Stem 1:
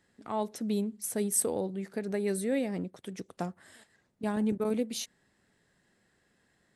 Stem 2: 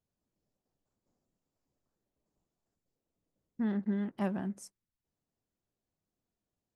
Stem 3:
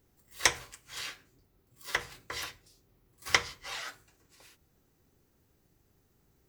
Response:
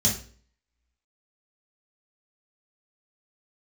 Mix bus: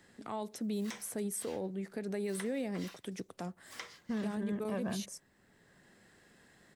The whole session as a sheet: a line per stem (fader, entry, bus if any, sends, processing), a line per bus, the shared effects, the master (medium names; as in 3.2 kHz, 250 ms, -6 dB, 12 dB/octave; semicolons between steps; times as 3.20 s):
-4.0 dB, 0.00 s, no send, three bands compressed up and down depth 40%
+2.0 dB, 0.50 s, no send, comb 1.8 ms, depth 50%
-12.5 dB, 0.45 s, no send, high-pass 190 Hz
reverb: none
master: peak limiter -28.5 dBFS, peak gain reduction 10.5 dB